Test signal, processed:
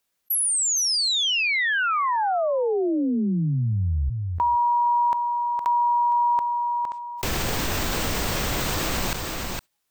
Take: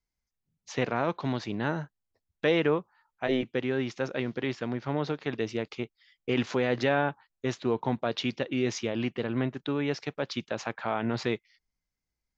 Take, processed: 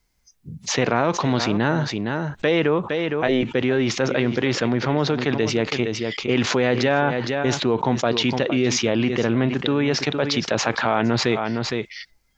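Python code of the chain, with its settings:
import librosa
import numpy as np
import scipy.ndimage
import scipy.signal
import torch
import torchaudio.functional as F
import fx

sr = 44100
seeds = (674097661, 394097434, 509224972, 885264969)

y = fx.noise_reduce_blind(x, sr, reduce_db=26)
y = y + 10.0 ** (-15.5 / 20.0) * np.pad(y, (int(462 * sr / 1000.0), 0))[:len(y)]
y = fx.env_flatten(y, sr, amount_pct=70)
y = y * librosa.db_to_amplitude(4.0)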